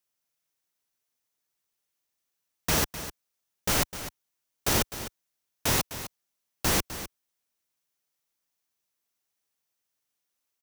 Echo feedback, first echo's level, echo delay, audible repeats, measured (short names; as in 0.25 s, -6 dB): no steady repeat, -12.5 dB, 0.255 s, 1